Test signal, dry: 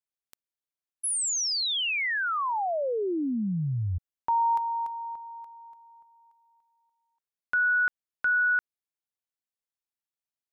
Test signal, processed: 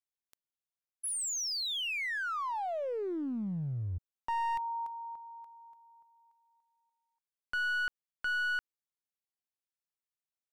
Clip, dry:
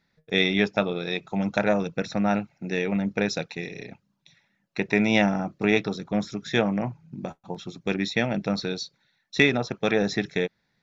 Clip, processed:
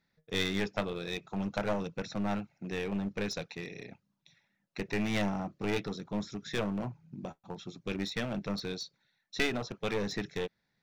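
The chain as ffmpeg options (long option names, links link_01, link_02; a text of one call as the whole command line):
ffmpeg -i in.wav -af "aeval=exprs='clip(val(0),-1,0.0473)':channel_layout=same,volume=-6.5dB" out.wav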